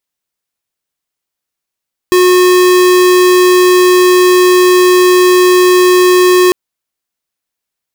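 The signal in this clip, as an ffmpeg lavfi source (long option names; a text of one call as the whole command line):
ffmpeg -f lavfi -i "aevalsrc='0.473*(2*lt(mod(363*t,1),0.5)-1)':duration=4.4:sample_rate=44100" out.wav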